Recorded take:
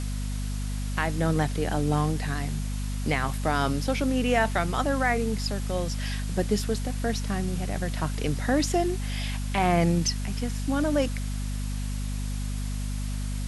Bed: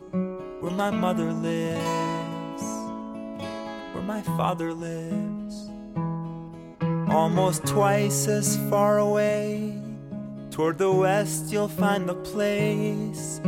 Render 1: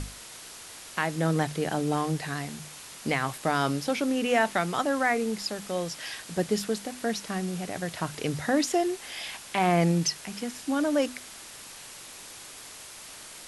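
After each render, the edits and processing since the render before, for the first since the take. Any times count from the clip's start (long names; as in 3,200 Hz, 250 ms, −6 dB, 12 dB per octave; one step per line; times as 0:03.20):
mains-hum notches 50/100/150/200/250 Hz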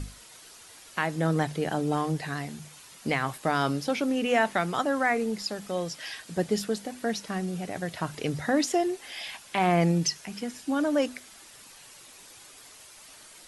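broadband denoise 8 dB, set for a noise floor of −45 dBFS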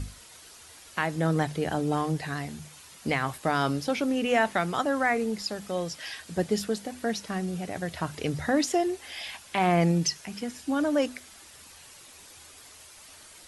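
parametric band 78 Hz +14.5 dB 0.31 octaves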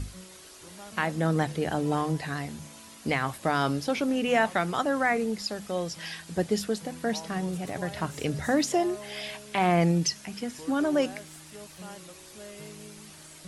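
mix in bed −21 dB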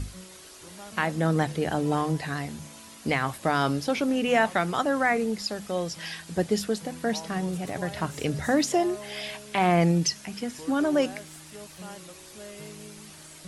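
level +1.5 dB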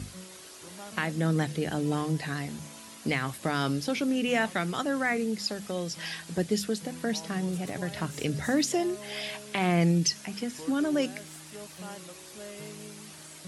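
high-pass filter 100 Hz
dynamic equaliser 830 Hz, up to −8 dB, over −38 dBFS, Q 0.76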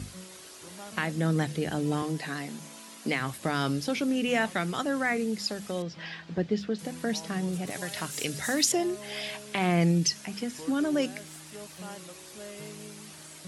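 0:02.02–0:03.20: high-pass filter 170 Hz 24 dB per octave
0:05.82–0:06.79: high-frequency loss of the air 210 metres
0:07.70–0:08.72: spectral tilt +2.5 dB per octave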